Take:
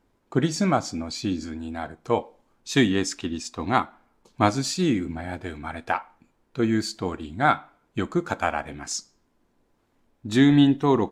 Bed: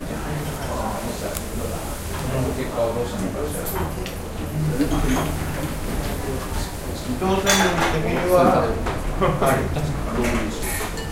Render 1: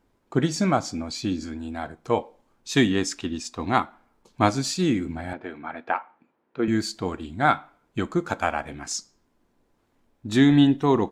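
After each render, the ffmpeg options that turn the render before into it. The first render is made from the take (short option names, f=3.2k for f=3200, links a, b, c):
-filter_complex "[0:a]asettb=1/sr,asplit=3[a][b][c];[a]atrim=end=5.334[d];[b]atrim=start=5.33:end=6.68,asetpts=PTS-STARTPTS,afade=t=in:d=0.004:c=qsin,afade=t=out:st=1.346:d=0.004:c=qsin,highpass=230,lowpass=2.4k[e];[c]atrim=start=6.676[f];[d][e]acrossfade=d=0.004:c1=hsin:c2=qsin[g];[g][f]acrossfade=d=0.004:c1=qsin:c2=hsin"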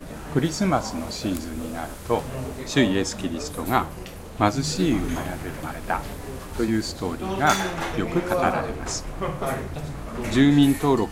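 -filter_complex "[1:a]volume=-8.5dB[a];[0:a][a]amix=inputs=2:normalize=0"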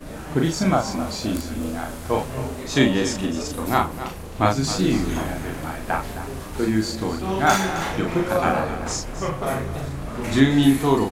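-filter_complex "[0:a]asplit=2[a][b];[b]adelay=37,volume=-3dB[c];[a][c]amix=inputs=2:normalize=0,aecho=1:1:264:0.237"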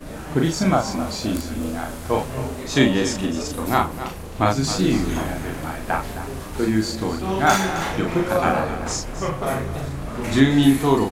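-af "volume=1dB,alimiter=limit=-3dB:level=0:latency=1"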